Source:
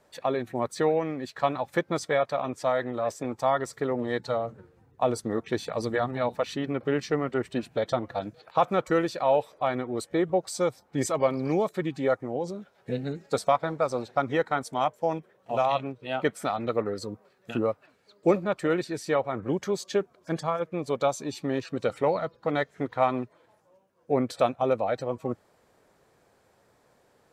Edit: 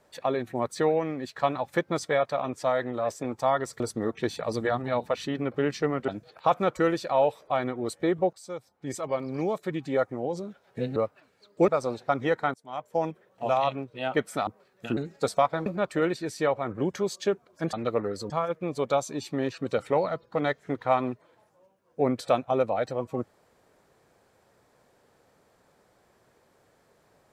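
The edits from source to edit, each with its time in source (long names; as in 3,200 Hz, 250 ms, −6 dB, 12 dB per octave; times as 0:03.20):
0:03.80–0:05.09: remove
0:07.37–0:08.19: remove
0:10.44–0:12.24: fade in, from −14.5 dB
0:13.07–0:13.76: swap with 0:17.62–0:18.34
0:14.62–0:15.04: fade in quadratic, from −21.5 dB
0:16.55–0:17.12: move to 0:20.41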